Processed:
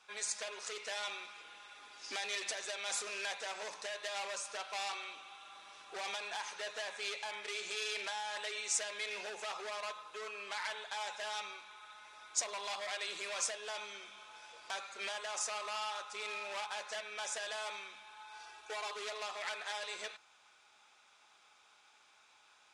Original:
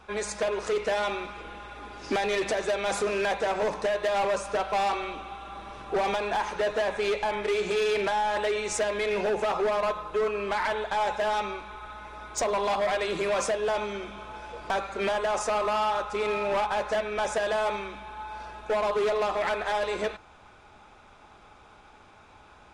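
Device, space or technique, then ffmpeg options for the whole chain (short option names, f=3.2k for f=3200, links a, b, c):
piezo pickup straight into a mixer: -filter_complex "[0:a]lowpass=7.5k,aderivative,asettb=1/sr,asplit=3[a][b][c];[a]atrim=end=18.334[d];[b]atrim=start=18.33:end=18.93,asetpts=PTS-STARTPTS,afade=t=in:d=0.004:c=qsin,afade=t=out:st=0.596:d=0.004:c=qsin,aecho=1:1:2.6:0.63,atrim=end_sample=26460[e];[c]atrim=start=18.926[f];[d][e]acrossfade=d=0.004:c1=hsin:c2=qsin[g];[g][f]acrossfade=d=0.004:c1=qsin:c2=hsin,volume=2.5dB"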